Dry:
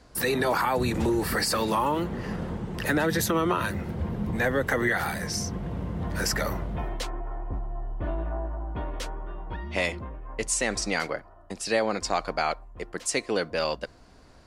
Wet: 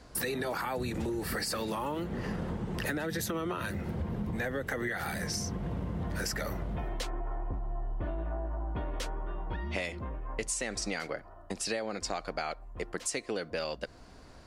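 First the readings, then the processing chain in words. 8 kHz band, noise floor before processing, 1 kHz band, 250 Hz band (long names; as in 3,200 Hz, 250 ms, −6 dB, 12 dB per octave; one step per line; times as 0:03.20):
−5.5 dB, −52 dBFS, −9.0 dB, −6.5 dB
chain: dynamic equaliser 1,000 Hz, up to −5 dB, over −43 dBFS, Q 3.1
downward compressor, threshold −32 dBFS, peak gain reduction 12 dB
level +1 dB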